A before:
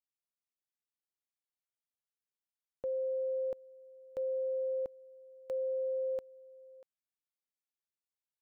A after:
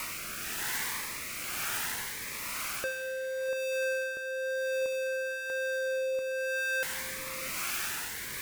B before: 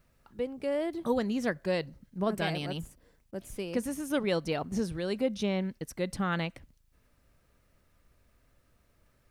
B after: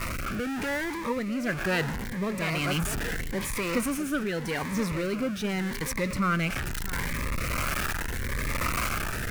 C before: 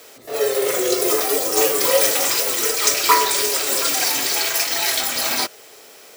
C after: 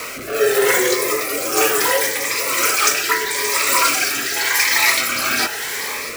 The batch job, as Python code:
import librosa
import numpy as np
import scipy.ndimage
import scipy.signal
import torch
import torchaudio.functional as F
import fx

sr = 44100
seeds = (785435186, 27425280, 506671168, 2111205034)

p1 = x + 0.5 * 10.0 ** (-28.5 / 20.0) * np.sign(x)
p2 = fx.rider(p1, sr, range_db=4, speed_s=0.5)
p3 = fx.band_shelf(p2, sr, hz=1500.0, db=10.5, octaves=1.7)
p4 = p3 + fx.echo_single(p3, sr, ms=647, db=-14.5, dry=0)
p5 = fx.rotary(p4, sr, hz=1.0)
p6 = fx.notch_cascade(p5, sr, direction='rising', hz=0.81)
y = p6 * librosa.db_to_amplitude(2.0)